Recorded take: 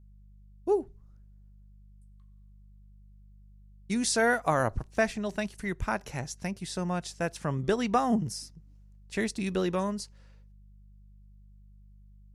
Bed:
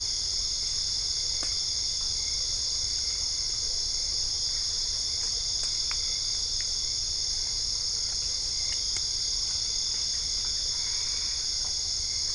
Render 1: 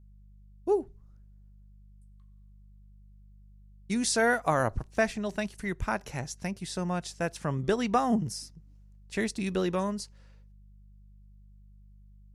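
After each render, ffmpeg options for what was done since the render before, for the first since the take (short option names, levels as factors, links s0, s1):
-af anull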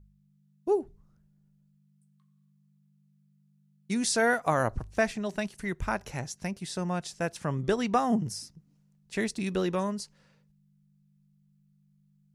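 -af "bandreject=f=50:t=h:w=4,bandreject=f=100:t=h:w=4"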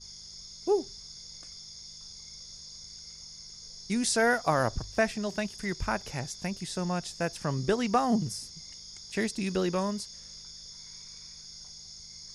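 -filter_complex "[1:a]volume=0.141[s0];[0:a][s0]amix=inputs=2:normalize=0"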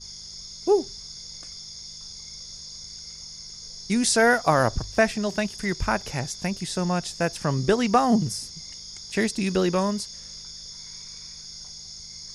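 -af "volume=2"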